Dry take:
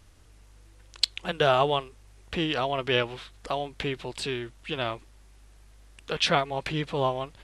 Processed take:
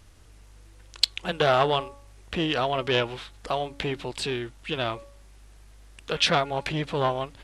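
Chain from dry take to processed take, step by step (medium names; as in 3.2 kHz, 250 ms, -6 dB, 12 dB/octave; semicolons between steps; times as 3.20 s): de-hum 281.9 Hz, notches 5; transformer saturation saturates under 1.9 kHz; trim +3 dB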